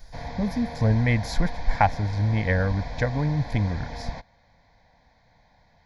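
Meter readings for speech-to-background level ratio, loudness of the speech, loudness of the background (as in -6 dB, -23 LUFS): 11.5 dB, -25.5 LUFS, -37.0 LUFS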